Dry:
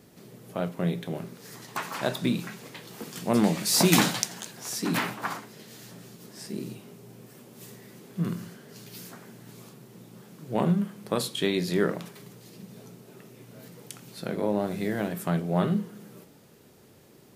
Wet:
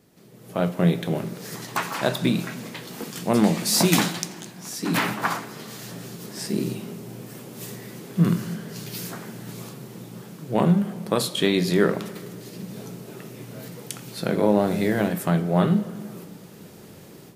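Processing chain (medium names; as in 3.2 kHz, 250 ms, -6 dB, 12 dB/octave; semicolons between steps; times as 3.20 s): level rider gain up to 14 dB; on a send: reverberation RT60 2.2 s, pre-delay 6 ms, DRR 14 dB; on the sum: trim -4.5 dB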